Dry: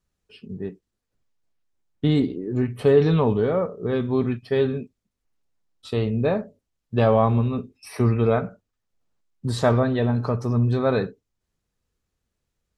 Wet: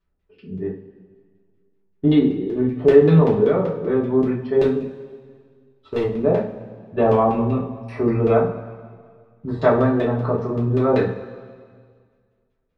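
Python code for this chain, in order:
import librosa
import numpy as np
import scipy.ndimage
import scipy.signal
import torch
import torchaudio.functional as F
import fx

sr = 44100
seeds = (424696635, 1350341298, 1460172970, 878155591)

y = fx.filter_lfo_lowpass(x, sr, shape='saw_down', hz=5.2, low_hz=480.0, high_hz=3300.0, q=0.99)
y = fx.overload_stage(y, sr, gain_db=18.0, at=(4.63, 6.03))
y = fx.rev_double_slope(y, sr, seeds[0], early_s=0.32, late_s=1.9, knee_db=-17, drr_db=-5.0)
y = y * 10.0 ** (-2.0 / 20.0)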